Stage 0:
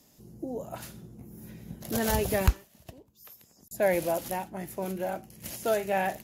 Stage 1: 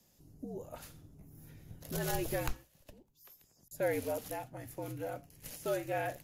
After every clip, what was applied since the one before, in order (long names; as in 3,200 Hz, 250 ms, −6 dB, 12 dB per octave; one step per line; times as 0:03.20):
frequency shifter −62 Hz
mains-hum notches 60/120 Hz
level −7.5 dB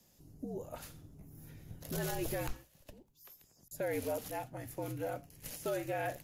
brickwall limiter −28.5 dBFS, peak gain reduction 8.5 dB
level +1.5 dB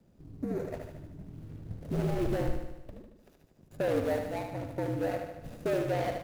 running median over 41 samples
on a send: repeating echo 75 ms, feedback 59%, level −6 dB
on the sum: level +8 dB